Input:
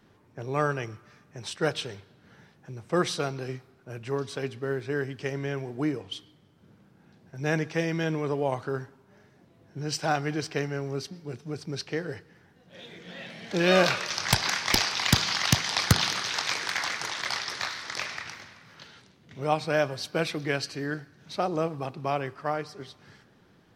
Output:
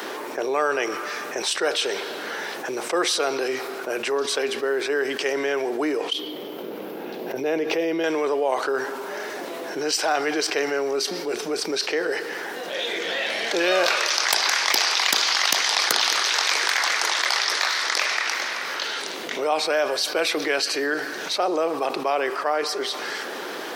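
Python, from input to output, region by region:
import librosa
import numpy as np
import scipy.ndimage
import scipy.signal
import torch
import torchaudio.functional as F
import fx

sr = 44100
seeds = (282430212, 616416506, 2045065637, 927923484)

y = fx.chain(x, sr, fx.curve_eq(hz=(450.0, 1600.0, 2800.0, 8500.0, 13000.0), db=(0, -13, -6, -19, -2)),
    fx.pre_swell(db_per_s=110.0), at=(6.13, 8.04))
y = scipy.signal.sosfilt(scipy.signal.butter(4, 360.0, 'highpass', fs=sr, output='sos'), y)
y = fx.high_shelf(y, sr, hz=11000.0, db=6.5)
y = fx.env_flatten(y, sr, amount_pct=70)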